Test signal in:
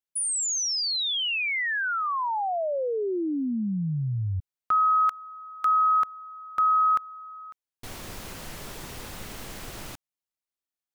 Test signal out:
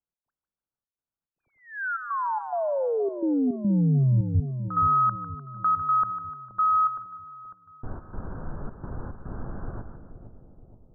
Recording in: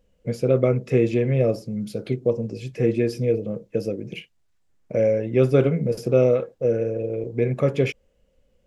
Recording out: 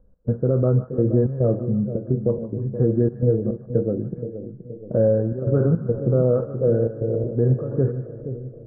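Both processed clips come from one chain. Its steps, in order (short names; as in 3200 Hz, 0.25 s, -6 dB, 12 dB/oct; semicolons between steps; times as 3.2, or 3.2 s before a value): Wiener smoothing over 9 samples; steep low-pass 1600 Hz 96 dB/oct; low shelf 250 Hz +9.5 dB; limiter -10 dBFS; step gate "x.xxxx.x" 107 bpm -12 dB; split-band echo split 740 Hz, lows 0.474 s, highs 0.15 s, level -10.5 dB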